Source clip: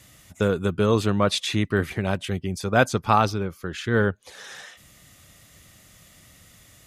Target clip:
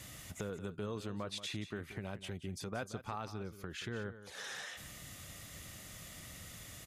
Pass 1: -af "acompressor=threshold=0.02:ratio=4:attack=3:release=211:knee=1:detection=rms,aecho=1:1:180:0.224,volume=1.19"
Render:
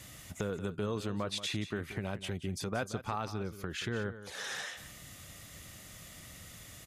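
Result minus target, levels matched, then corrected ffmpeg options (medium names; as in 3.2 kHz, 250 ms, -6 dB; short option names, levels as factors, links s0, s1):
compression: peak gain reduction -5.5 dB
-af "acompressor=threshold=0.00841:ratio=4:attack=3:release=211:knee=1:detection=rms,aecho=1:1:180:0.224,volume=1.19"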